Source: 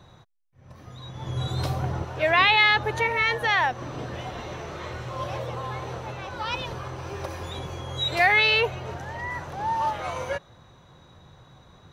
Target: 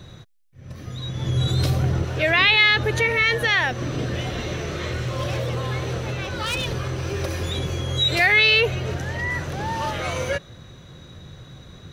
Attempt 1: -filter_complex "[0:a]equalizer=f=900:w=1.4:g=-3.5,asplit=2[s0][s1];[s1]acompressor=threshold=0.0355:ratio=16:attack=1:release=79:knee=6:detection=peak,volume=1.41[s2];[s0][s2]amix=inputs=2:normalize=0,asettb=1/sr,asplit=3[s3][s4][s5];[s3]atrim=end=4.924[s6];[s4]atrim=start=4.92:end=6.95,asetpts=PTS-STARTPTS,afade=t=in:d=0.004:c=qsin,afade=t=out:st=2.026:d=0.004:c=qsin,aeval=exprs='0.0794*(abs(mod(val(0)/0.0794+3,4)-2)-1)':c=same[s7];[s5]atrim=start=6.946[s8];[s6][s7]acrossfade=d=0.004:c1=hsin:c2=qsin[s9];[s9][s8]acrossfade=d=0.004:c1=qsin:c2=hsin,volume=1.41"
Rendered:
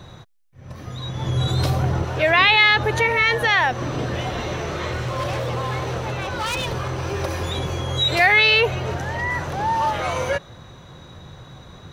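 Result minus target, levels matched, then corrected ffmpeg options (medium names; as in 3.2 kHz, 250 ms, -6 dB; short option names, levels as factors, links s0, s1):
1 kHz band +5.5 dB
-filter_complex "[0:a]equalizer=f=900:w=1.4:g=-13,asplit=2[s0][s1];[s1]acompressor=threshold=0.0355:ratio=16:attack=1:release=79:knee=6:detection=peak,volume=1.41[s2];[s0][s2]amix=inputs=2:normalize=0,asettb=1/sr,asplit=3[s3][s4][s5];[s3]atrim=end=4.924[s6];[s4]atrim=start=4.92:end=6.95,asetpts=PTS-STARTPTS,afade=t=in:d=0.004:c=qsin,afade=t=out:st=2.026:d=0.004:c=qsin,aeval=exprs='0.0794*(abs(mod(val(0)/0.0794+3,4)-2)-1)':c=same[s7];[s5]atrim=start=6.946[s8];[s6][s7]acrossfade=d=0.004:c1=hsin:c2=qsin[s9];[s9][s8]acrossfade=d=0.004:c1=qsin:c2=hsin,volume=1.41"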